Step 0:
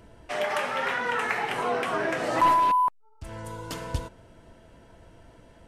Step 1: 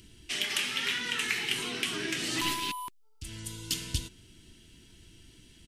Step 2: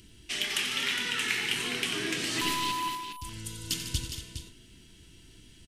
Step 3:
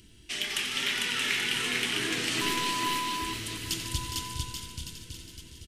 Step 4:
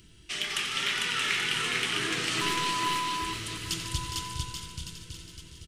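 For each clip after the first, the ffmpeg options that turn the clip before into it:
-af "firequalizer=gain_entry='entry(370,0);entry(540,-21);entry(2000,1);entry(3000,12)':delay=0.05:min_phase=1,volume=-3dB"
-af "aecho=1:1:90|149|234|411|450:0.282|0.251|0.251|0.355|0.112"
-af "aecho=1:1:450|832.5|1158|1434|1669:0.631|0.398|0.251|0.158|0.1,volume=-1dB"
-af "equalizer=f=160:t=o:w=0.33:g=5,equalizer=f=250:t=o:w=0.33:g=-7,equalizer=f=1.25k:t=o:w=0.33:g=7,equalizer=f=12.5k:t=o:w=0.33:g=-8"

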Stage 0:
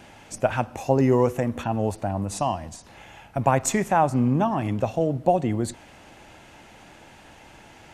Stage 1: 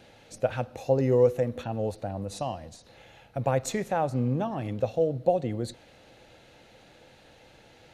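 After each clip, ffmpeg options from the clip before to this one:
-af "equalizer=f=125:t=o:w=0.33:g=5,equalizer=f=500:t=o:w=0.33:g=11,equalizer=f=1k:t=o:w=0.33:g=-6,equalizer=f=4k:t=o:w=0.33:g=10,equalizer=f=8k:t=o:w=0.33:g=-4,volume=-8dB"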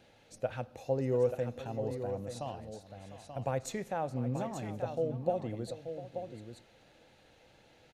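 -af "aecho=1:1:700|883:0.178|0.376,volume=-8dB"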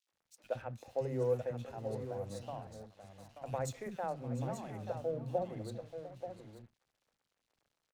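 -filter_complex "[0:a]aeval=exprs='sgn(val(0))*max(abs(val(0))-0.0015,0)':c=same,acrossover=split=280|2500[a][b][c];[b]adelay=70[d];[a]adelay=120[e];[e][d][c]amix=inputs=3:normalize=0,volume=-2.5dB"

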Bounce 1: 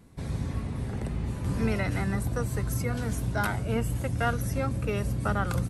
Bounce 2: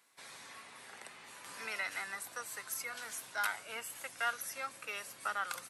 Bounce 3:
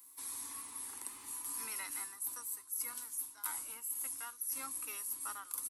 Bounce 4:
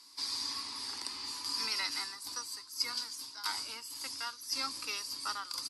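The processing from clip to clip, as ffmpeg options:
-af "highpass=1.3k,volume=-1dB"
-af "firequalizer=gain_entry='entry(100,0);entry(150,-25);entry(270,2);entry(430,-13);entry(660,-21);entry(960,-3);entry(1500,-16);entry(11000,13)':delay=0.05:min_phase=1,areverse,acompressor=threshold=-44dB:ratio=12,areverse,volume=7dB"
-af "lowpass=f=4.8k:t=q:w=13,volume=6.5dB"

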